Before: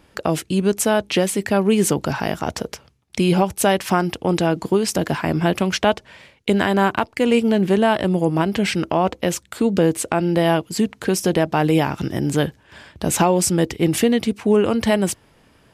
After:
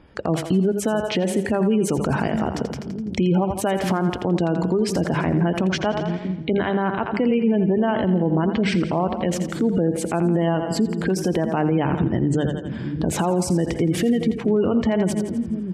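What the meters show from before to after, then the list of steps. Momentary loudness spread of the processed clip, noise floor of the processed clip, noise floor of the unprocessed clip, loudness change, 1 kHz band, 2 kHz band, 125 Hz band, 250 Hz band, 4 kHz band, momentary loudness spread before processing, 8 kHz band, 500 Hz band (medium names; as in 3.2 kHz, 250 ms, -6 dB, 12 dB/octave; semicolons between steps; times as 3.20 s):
5 LU, -31 dBFS, -56 dBFS, -2.0 dB, -4.5 dB, -5.0 dB, +0.5 dB, -0.5 dB, -6.5 dB, 7 LU, -8.5 dB, -3.0 dB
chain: hum notches 50/100/150/200 Hz; in parallel at -6 dB: crossover distortion -35 dBFS; on the sum: spectral gate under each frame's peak -25 dB strong; bass shelf 330 Hz +6 dB; band-stop 2.7 kHz, Q 18; on a send: two-band feedback delay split 320 Hz, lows 641 ms, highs 84 ms, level -12 dB; on the sum: compression 2:1, threshold -14 dBFS, peak gain reduction 6 dB; peak limiter -12 dBFS, peak gain reduction 10 dB; treble shelf 6.7 kHz -11.5 dB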